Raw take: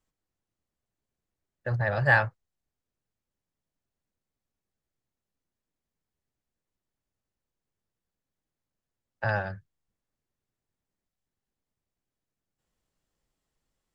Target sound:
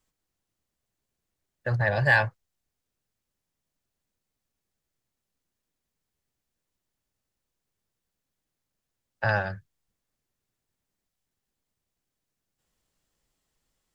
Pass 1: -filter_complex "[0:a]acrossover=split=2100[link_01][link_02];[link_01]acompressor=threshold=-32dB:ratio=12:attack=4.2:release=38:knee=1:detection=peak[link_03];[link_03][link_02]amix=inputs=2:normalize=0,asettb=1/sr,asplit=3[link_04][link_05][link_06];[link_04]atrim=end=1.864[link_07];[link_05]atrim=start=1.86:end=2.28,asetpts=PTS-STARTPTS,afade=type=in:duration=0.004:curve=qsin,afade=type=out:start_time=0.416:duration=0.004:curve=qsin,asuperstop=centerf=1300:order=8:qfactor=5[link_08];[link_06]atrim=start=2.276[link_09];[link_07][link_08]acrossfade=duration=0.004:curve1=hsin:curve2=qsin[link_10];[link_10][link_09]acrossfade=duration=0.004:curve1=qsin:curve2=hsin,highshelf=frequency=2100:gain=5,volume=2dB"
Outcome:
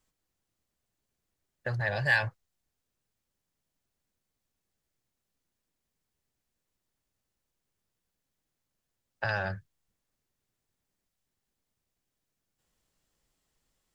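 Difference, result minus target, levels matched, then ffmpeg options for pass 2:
downward compressor: peak gain reduction +9 dB
-filter_complex "[0:a]acrossover=split=2100[link_01][link_02];[link_01]acompressor=threshold=-22dB:ratio=12:attack=4.2:release=38:knee=1:detection=peak[link_03];[link_03][link_02]amix=inputs=2:normalize=0,asettb=1/sr,asplit=3[link_04][link_05][link_06];[link_04]atrim=end=1.864[link_07];[link_05]atrim=start=1.86:end=2.28,asetpts=PTS-STARTPTS,afade=type=in:duration=0.004:curve=qsin,afade=type=out:start_time=0.416:duration=0.004:curve=qsin,asuperstop=centerf=1300:order=8:qfactor=5[link_08];[link_06]atrim=start=2.276[link_09];[link_07][link_08]acrossfade=duration=0.004:curve1=hsin:curve2=qsin[link_10];[link_10][link_09]acrossfade=duration=0.004:curve1=qsin:curve2=hsin,highshelf=frequency=2100:gain=5,volume=2dB"

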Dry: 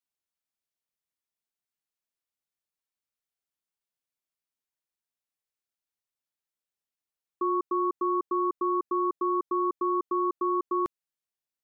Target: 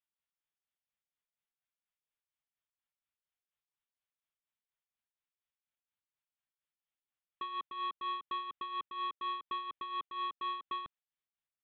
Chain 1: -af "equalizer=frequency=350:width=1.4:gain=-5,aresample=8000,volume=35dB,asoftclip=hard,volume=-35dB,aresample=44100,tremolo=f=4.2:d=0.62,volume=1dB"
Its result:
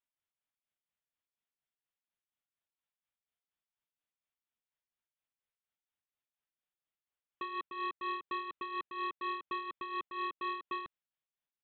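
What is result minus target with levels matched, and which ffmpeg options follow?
250 Hz band +9.0 dB
-af "equalizer=frequency=350:width=1.4:gain=-15,aresample=8000,volume=35dB,asoftclip=hard,volume=-35dB,aresample=44100,tremolo=f=4.2:d=0.62,volume=1dB"

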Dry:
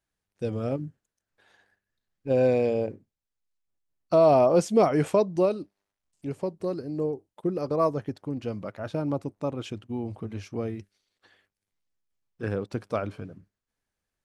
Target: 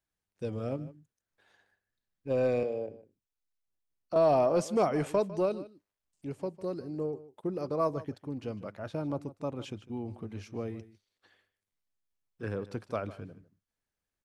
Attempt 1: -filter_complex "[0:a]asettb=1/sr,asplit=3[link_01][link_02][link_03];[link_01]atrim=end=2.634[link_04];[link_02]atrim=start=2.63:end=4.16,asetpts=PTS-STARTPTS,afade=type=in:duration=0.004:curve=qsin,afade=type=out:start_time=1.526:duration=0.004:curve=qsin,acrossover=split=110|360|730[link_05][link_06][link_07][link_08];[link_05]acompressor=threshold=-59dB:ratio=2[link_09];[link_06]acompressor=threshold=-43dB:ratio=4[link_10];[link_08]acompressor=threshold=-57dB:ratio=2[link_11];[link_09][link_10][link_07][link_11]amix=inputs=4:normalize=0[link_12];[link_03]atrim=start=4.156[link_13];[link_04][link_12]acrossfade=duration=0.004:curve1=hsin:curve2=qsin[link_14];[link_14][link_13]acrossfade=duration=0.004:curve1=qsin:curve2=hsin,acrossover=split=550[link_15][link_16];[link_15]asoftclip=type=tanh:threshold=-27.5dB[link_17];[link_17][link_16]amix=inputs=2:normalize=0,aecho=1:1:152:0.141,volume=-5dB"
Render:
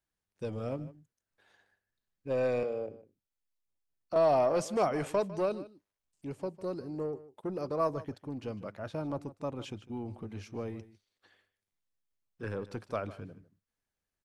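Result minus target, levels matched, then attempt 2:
soft clipping: distortion +8 dB
-filter_complex "[0:a]asettb=1/sr,asplit=3[link_01][link_02][link_03];[link_01]atrim=end=2.634[link_04];[link_02]atrim=start=2.63:end=4.16,asetpts=PTS-STARTPTS,afade=type=in:duration=0.004:curve=qsin,afade=type=out:start_time=1.526:duration=0.004:curve=qsin,acrossover=split=110|360|730[link_05][link_06][link_07][link_08];[link_05]acompressor=threshold=-59dB:ratio=2[link_09];[link_06]acompressor=threshold=-43dB:ratio=4[link_10];[link_08]acompressor=threshold=-57dB:ratio=2[link_11];[link_09][link_10][link_07][link_11]amix=inputs=4:normalize=0[link_12];[link_03]atrim=start=4.156[link_13];[link_04][link_12]acrossfade=duration=0.004:curve1=hsin:curve2=qsin[link_14];[link_14][link_13]acrossfade=duration=0.004:curve1=qsin:curve2=hsin,acrossover=split=550[link_15][link_16];[link_15]asoftclip=type=tanh:threshold=-19.5dB[link_17];[link_17][link_16]amix=inputs=2:normalize=0,aecho=1:1:152:0.141,volume=-5dB"

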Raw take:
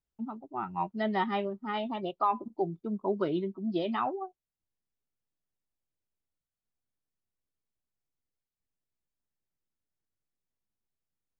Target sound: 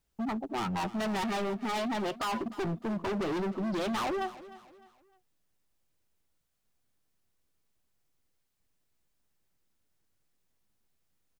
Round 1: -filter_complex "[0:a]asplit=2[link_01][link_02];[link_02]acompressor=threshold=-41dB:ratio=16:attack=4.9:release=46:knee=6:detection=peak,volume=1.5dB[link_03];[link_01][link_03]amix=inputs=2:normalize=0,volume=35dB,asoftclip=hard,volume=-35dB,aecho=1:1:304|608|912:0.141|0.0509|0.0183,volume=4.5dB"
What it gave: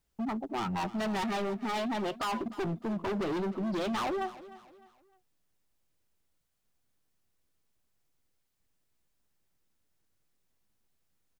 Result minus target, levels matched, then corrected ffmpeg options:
downward compressor: peak gain reduction +8.5 dB
-filter_complex "[0:a]asplit=2[link_01][link_02];[link_02]acompressor=threshold=-32dB:ratio=16:attack=4.9:release=46:knee=6:detection=peak,volume=1.5dB[link_03];[link_01][link_03]amix=inputs=2:normalize=0,volume=35dB,asoftclip=hard,volume=-35dB,aecho=1:1:304|608|912:0.141|0.0509|0.0183,volume=4.5dB"

